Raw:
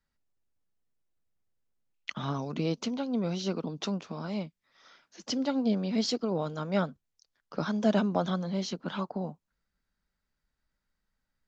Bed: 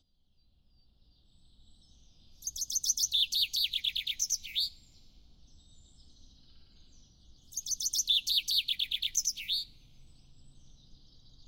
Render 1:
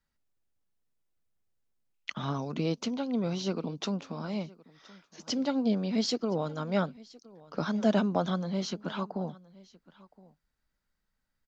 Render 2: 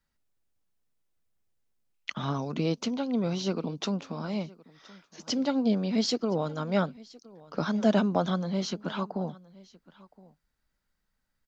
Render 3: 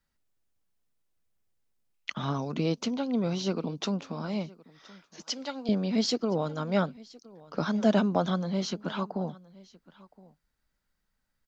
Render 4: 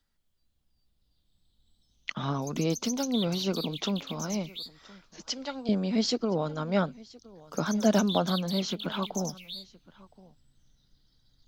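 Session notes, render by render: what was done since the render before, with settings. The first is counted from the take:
delay 1018 ms -22.5 dB
trim +2 dB
5.22–5.69 s: high-pass 1.2 kHz 6 dB/octave
add bed -8.5 dB

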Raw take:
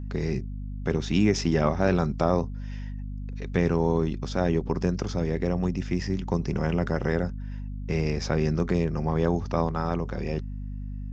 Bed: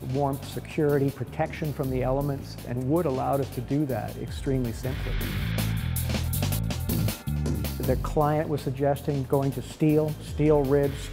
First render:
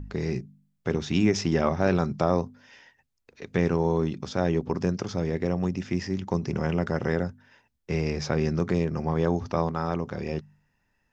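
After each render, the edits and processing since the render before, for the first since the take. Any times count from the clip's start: de-hum 50 Hz, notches 5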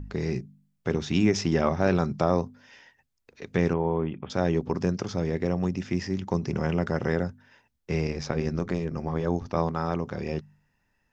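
3.73–4.30 s: rippled Chebyshev low-pass 3.3 kHz, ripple 3 dB; 8.07–9.56 s: AM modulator 89 Hz, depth 45%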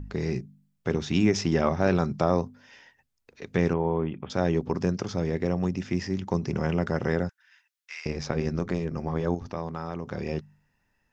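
7.29–8.06 s: high-pass 1.4 kHz 24 dB/octave; 9.34–10.09 s: compression 2:1, threshold -32 dBFS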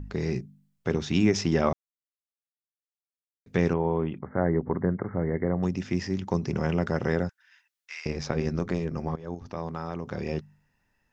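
1.73–3.46 s: mute; 4.19–5.63 s: brick-wall FIR low-pass 2.2 kHz; 9.16–9.65 s: fade in linear, from -20 dB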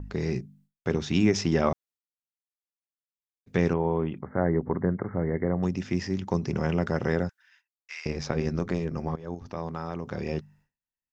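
expander -54 dBFS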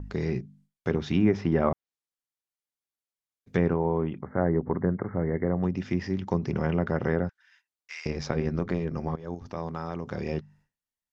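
low-pass that closes with the level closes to 1.8 kHz, closed at -20.5 dBFS; band-stop 2.6 kHz, Q 27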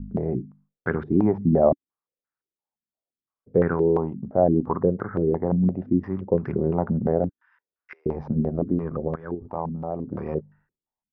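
step-sequenced low-pass 5.8 Hz 220–1500 Hz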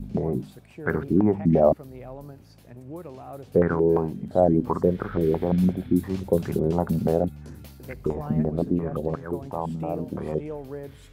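add bed -14 dB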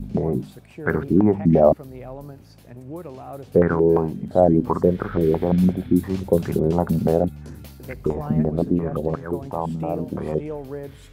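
trim +3.5 dB

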